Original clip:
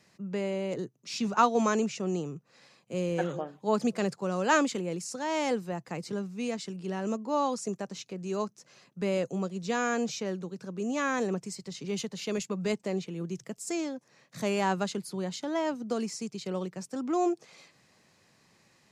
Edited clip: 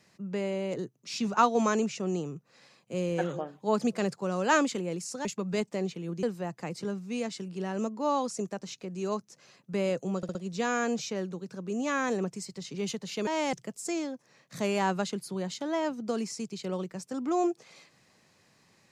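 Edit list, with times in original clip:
5.25–5.51 swap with 12.37–13.35
9.45 stutter 0.06 s, 4 plays

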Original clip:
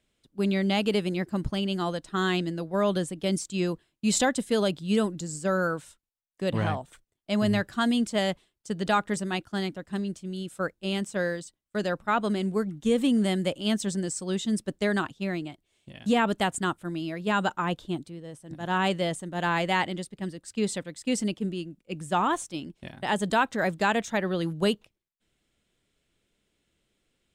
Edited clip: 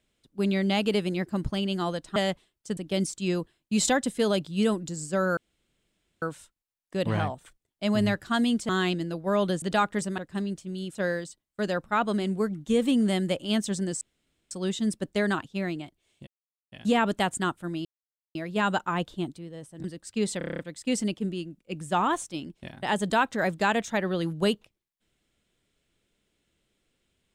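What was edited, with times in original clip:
2.16–3.09 swap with 8.16–8.77
5.69 insert room tone 0.85 s
9.33–9.76 cut
10.53–11.11 cut
14.17 insert room tone 0.50 s
15.93 insert silence 0.45 s
17.06 insert silence 0.50 s
18.55–20.25 cut
20.79 stutter 0.03 s, 8 plays

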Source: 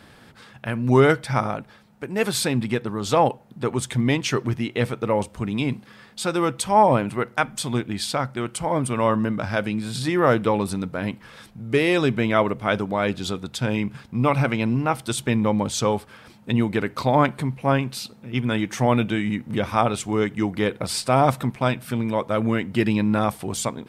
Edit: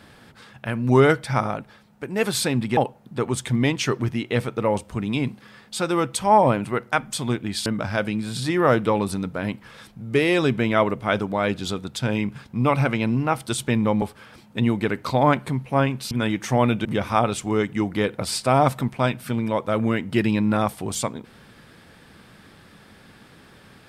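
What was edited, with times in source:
2.77–3.22 cut
8.11–9.25 cut
15.61–15.94 cut
18.03–18.4 cut
19.14–19.47 cut

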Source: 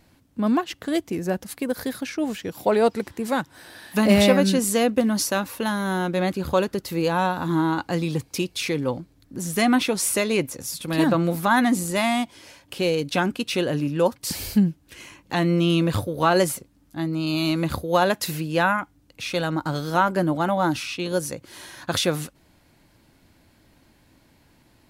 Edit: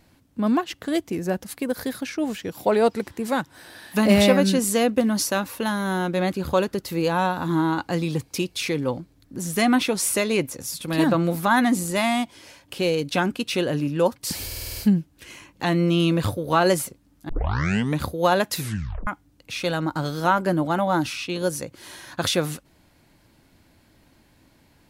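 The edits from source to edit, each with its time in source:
14.46 stutter 0.05 s, 7 plays
16.99 tape start 0.71 s
18.27 tape stop 0.50 s

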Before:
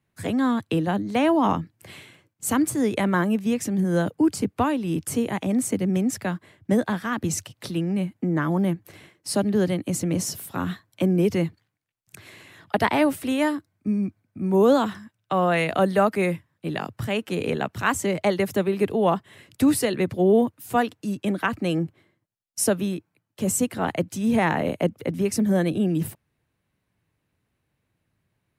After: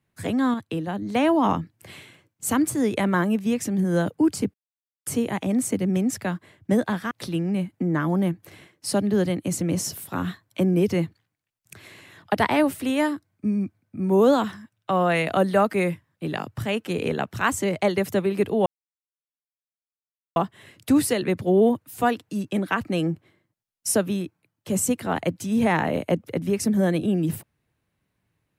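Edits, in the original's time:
0.54–1.02 gain -5 dB
4.54–5.06 mute
7.11–7.53 cut
19.08 insert silence 1.70 s

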